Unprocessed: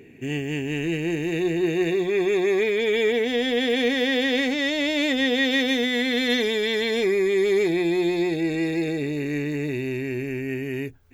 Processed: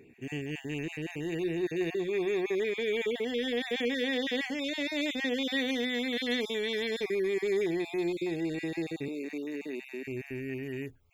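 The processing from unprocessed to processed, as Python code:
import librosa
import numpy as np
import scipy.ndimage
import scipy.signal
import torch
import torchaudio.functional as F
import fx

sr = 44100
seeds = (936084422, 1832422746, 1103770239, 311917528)

y = fx.spec_dropout(x, sr, seeds[0], share_pct=21)
y = fx.ellip_highpass(y, sr, hz=200.0, order=4, stop_db=50, at=(9.08, 10.05))
y = F.gain(torch.from_numpy(y), -8.0).numpy()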